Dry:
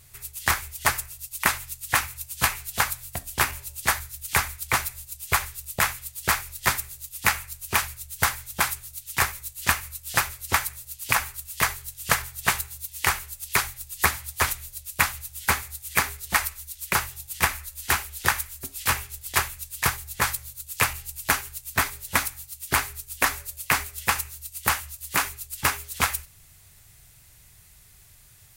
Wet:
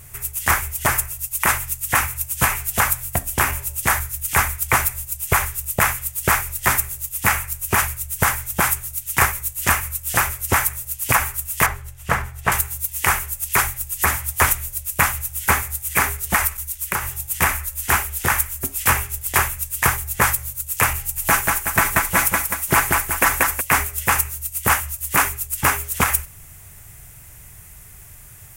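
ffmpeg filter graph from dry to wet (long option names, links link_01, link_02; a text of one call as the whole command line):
ffmpeg -i in.wav -filter_complex "[0:a]asettb=1/sr,asplit=3[link_01][link_02][link_03];[link_01]atrim=end=11.664[link_04];[link_02]atrim=start=11.66:end=12.52,asetpts=PTS-STARTPTS,afade=type=in:duration=0.004:curve=qsin,afade=type=out:start_time=0.856:duration=0.004:curve=qsin,lowpass=frequency=1500:poles=1,bandreject=frequency=50:width_type=h:width=6,bandreject=frequency=100:width_type=h:width=6,bandreject=frequency=150:width_type=h:width=6,bandreject=frequency=200:width_type=h:width=6,bandreject=frequency=250:width_type=h:width=6,bandreject=frequency=300:width_type=h:width=6,bandreject=frequency=350:width_type=h:width=6,bandreject=frequency=400:width_type=h:width=6[link_05];[link_03]atrim=start=12.516[link_06];[link_04][link_05]acrossfade=duration=0.004:curve1=hsin:curve2=qsin[link_07];[link_07][link_06]acrossfade=duration=0.004:curve1=qsin:curve2=hsin,asettb=1/sr,asplit=3[link_08][link_09][link_10];[link_08]atrim=end=16.574[link_11];[link_09]atrim=start=16.57:end=17.15,asetpts=PTS-STARTPTS,afade=type=in:duration=0.004:curve=qsin,afade=type=out:start_time=0.576:duration=0.004:curve=qsin,bandreject=frequency=690:width=17,acompressor=threshold=-31dB:ratio=3:attack=3.2:release=140:knee=1:detection=peak,agate=range=-33dB:threshold=-46dB:ratio=3:release=100:detection=peak[link_12];[link_10]atrim=start=17.146[link_13];[link_11][link_12]acrossfade=duration=0.004:curve1=hsin:curve2=qsin[link_14];[link_14][link_13]acrossfade=duration=0.004:curve1=qsin:curve2=hsin,asettb=1/sr,asplit=3[link_15][link_16][link_17];[link_15]atrim=end=20.994[link_18];[link_16]atrim=start=20.99:end=23.61,asetpts=PTS-STARTPTS,afade=type=in:duration=0.004:curve=qsin,afade=type=out:start_time=2.616:duration=0.004:curve=qsin,aecho=1:1:6:0.37,atrim=end_sample=115542,aecho=1:1:184|368|552|736:0.501|0.18|0.065|0.0234,atrim=end_sample=115542[link_19];[link_17]atrim=start=23.606[link_20];[link_18][link_19]acrossfade=duration=0.004:curve1=hsin:curve2=qsin[link_21];[link_21][link_20]acrossfade=duration=0.004:curve1=qsin:curve2=hsin,equalizer=frequency=4200:width_type=o:width=0.81:gain=-13,alimiter=level_in=14dB:limit=-1dB:release=50:level=0:latency=1,volume=-2.5dB" out.wav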